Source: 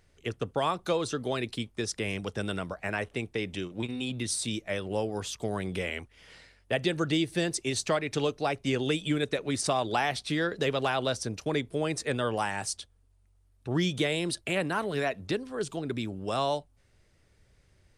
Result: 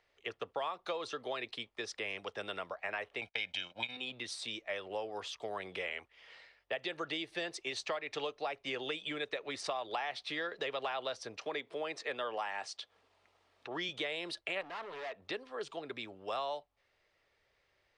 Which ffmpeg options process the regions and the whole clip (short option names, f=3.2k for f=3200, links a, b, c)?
-filter_complex "[0:a]asettb=1/sr,asplit=3[a][b][c];[a]atrim=end=3.214[d];[b]atrim=start=3.21:end=3.97,asetpts=PTS-STARTPTS,afade=t=in:d=0.004:c=qsin,afade=t=out:st=0.756:d=0.004:c=qsin,agate=range=-23dB:threshold=-45dB:ratio=16:release=100:detection=peak,equalizer=f=4.1k:w=0.43:g=9.5,aecho=1:1:1.3:0.79,atrim=end_sample=33516[e];[c]atrim=start=3.966[f];[d][e]acrossfade=d=0.004:c1=hsin:c2=qsin[g];[g][f]acrossfade=d=0.004:c1=qsin:c2=hsin,asettb=1/sr,asplit=3[h][i][j];[h]atrim=end=11.394[k];[i]atrim=start=11.39:end=13.89,asetpts=PTS-STARTPTS,afade=t=in:d=0.004:c=qsin,afade=t=out:st=2.496:d=0.004:c=qsin,acompressor=mode=upward:threshold=-31dB:ratio=2.5:attack=3.2:release=140:knee=2.83:detection=peak,highpass=160,lowpass=7.9k[l];[j]atrim=start=13.886[m];[k][l]acrossfade=d=0.004:c1=hsin:c2=qsin[n];[n][m]acrossfade=d=0.004:c1=qsin:c2=hsin,asettb=1/sr,asplit=3[o][p][q];[o]atrim=end=14.614[r];[p]atrim=start=14.61:end=15.22,asetpts=PTS-STARTPTS,afade=t=in:d=0.004:c=qsin,afade=t=out:st=0.606:d=0.004:c=qsin,highshelf=f=2.5k:g=-10.5,asoftclip=type=hard:threshold=-36dB[s];[q]atrim=start=15.216[t];[r][s]acrossfade=d=0.004:c1=hsin:c2=qsin[u];[u][t]acrossfade=d=0.004:c1=qsin:c2=hsin,acrossover=split=460 4700:gain=0.0891 1 0.0891[v][w][x];[v][w][x]amix=inputs=3:normalize=0,bandreject=f=1.5k:w=14,acompressor=threshold=-32dB:ratio=6,volume=-1.5dB"